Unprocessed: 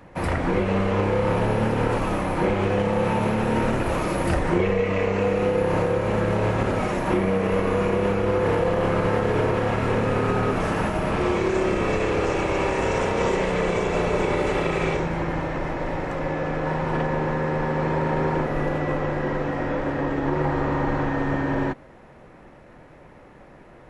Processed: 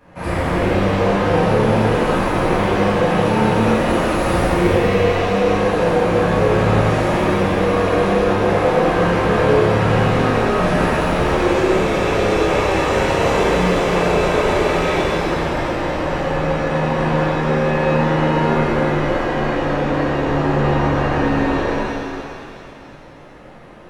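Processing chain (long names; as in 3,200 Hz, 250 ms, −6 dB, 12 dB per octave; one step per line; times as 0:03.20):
reverb with rising layers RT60 2.4 s, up +7 semitones, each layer −8 dB, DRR −11.5 dB
level −6 dB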